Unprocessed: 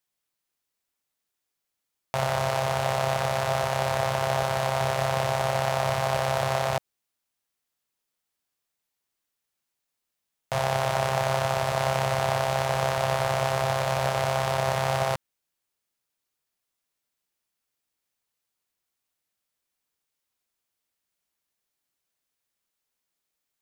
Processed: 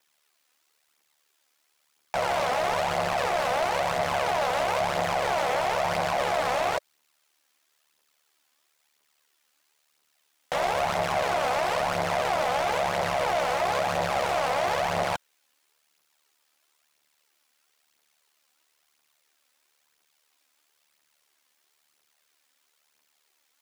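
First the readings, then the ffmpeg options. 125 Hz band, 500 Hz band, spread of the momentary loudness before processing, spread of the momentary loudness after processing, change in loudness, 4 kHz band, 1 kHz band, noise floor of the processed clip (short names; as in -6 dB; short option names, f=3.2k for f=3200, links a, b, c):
-11.0 dB, -0.5 dB, 2 LU, 2 LU, 0.0 dB, -0.5 dB, +1.0 dB, -72 dBFS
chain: -filter_complex "[0:a]alimiter=limit=-19dB:level=0:latency=1,aeval=exprs='val(0)*sin(2*PI*37*n/s)':c=same,aphaser=in_gain=1:out_gain=1:delay=4.1:decay=0.44:speed=1:type=triangular,asplit=2[a][b];[b]highpass=f=720:p=1,volume=27dB,asoftclip=type=tanh:threshold=-13.5dB[c];[a][c]amix=inputs=2:normalize=0,lowpass=f=5.6k:p=1,volume=-6dB,volume=-2.5dB"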